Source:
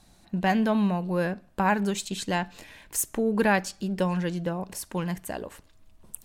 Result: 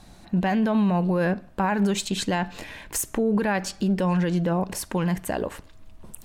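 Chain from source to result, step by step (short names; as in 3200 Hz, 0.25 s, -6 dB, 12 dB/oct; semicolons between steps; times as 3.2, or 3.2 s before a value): high shelf 4200 Hz -7 dB; in parallel at -3 dB: compressor, threshold -30 dBFS, peak gain reduction 11.5 dB; on the sum: limiter -20.5 dBFS, peak gain reduction 11 dB; gain +5 dB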